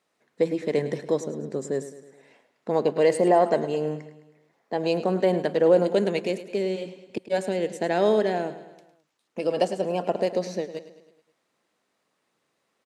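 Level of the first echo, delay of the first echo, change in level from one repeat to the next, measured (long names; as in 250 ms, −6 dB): −14.0 dB, 106 ms, −5.5 dB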